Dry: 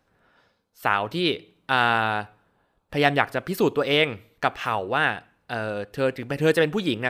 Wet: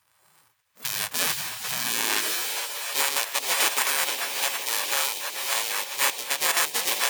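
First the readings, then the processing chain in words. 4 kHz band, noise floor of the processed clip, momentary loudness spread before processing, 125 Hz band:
+4.5 dB, -66 dBFS, 10 LU, -21.0 dB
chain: sorted samples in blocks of 64 samples; on a send: echo that smears into a reverb 468 ms, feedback 50%, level -7.5 dB; on the sum: dynamic bell 650 Hz, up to -4 dB, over -38 dBFS, Q 6.8; in parallel at -9 dB: sine folder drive 4 dB, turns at -2 dBFS; on the sum: peak limiter -9.5 dBFS, peak gain reduction 9 dB; high-pass sweep 260 Hz -> 1.4 kHz, 1.67–2.65 s; spectral gate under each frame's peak -20 dB weak; trim +5 dB

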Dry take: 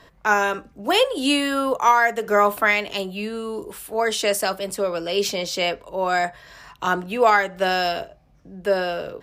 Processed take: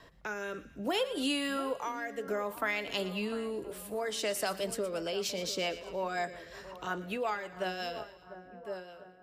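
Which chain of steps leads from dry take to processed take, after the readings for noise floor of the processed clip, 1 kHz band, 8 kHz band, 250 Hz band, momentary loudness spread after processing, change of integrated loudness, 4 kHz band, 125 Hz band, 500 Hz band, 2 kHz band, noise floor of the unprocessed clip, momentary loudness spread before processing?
-56 dBFS, -17.0 dB, -10.0 dB, -10.0 dB, 11 LU, -13.5 dB, -11.0 dB, -9.5 dB, -12.5 dB, -15.0 dB, -55 dBFS, 11 LU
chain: fade out at the end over 2.91 s; compression 3:1, threshold -28 dBFS, peak gain reduction 13 dB; rotary cabinet horn 0.6 Hz, later 5.5 Hz, at 4.48 s; two-band feedback delay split 1.6 kHz, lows 699 ms, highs 117 ms, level -14 dB; trim -2.5 dB

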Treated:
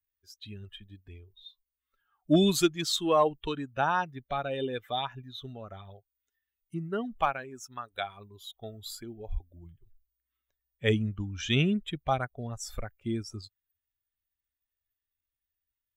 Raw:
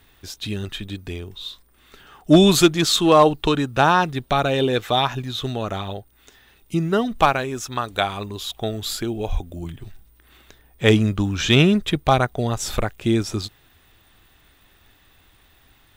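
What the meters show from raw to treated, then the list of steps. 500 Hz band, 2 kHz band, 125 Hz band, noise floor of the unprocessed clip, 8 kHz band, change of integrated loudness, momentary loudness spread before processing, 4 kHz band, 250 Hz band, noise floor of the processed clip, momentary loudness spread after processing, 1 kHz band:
-11.0 dB, -11.5 dB, -11.5 dB, -56 dBFS, -11.0 dB, -10.0 dB, 17 LU, -12.0 dB, -11.5 dB, under -85 dBFS, 20 LU, -11.0 dB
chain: expander on every frequency bin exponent 1.5; spectral noise reduction 10 dB; trim -8.5 dB

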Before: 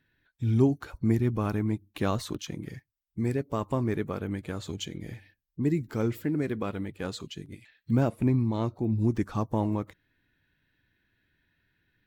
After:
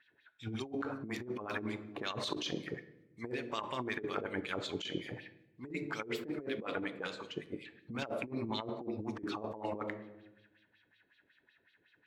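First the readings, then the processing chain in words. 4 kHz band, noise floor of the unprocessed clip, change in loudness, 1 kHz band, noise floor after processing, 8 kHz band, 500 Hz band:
+1.5 dB, -82 dBFS, -10.5 dB, -4.5 dB, -74 dBFS, -7.0 dB, -7.5 dB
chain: LFO band-pass sine 5.4 Hz 410–4000 Hz; simulated room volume 340 m³, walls mixed, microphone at 0.31 m; compressor with a negative ratio -46 dBFS, ratio -1; trim +6.5 dB

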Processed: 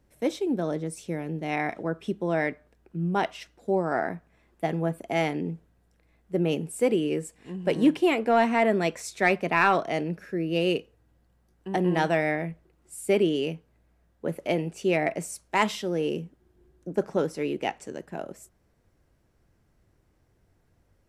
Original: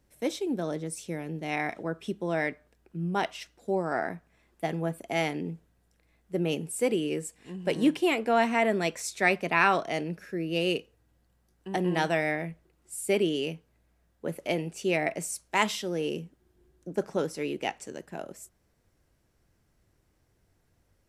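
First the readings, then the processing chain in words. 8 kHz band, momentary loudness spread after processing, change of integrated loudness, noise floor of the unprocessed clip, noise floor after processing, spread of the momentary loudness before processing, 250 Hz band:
-3.0 dB, 14 LU, +2.5 dB, -70 dBFS, -67 dBFS, 15 LU, +3.5 dB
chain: treble shelf 2.5 kHz -7 dB; in parallel at -6 dB: hard clipper -17.5 dBFS, distortion -19 dB

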